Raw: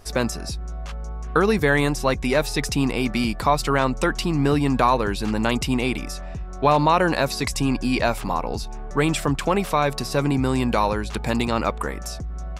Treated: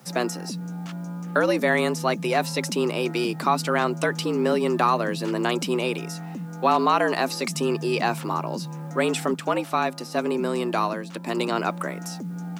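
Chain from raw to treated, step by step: frequency shift +120 Hz; added noise white -60 dBFS; 9.34–11.37 upward expander 1.5:1, over -29 dBFS; gain -2.5 dB

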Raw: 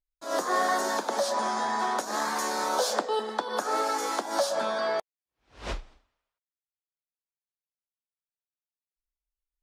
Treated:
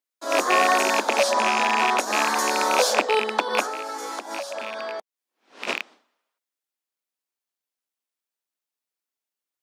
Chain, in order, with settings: rattling part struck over -41 dBFS, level -17 dBFS; steep high-pass 210 Hz 36 dB/oct; 3.64–5.68 compressor, threshold -36 dBFS, peak gain reduction 14 dB; gain +6.5 dB

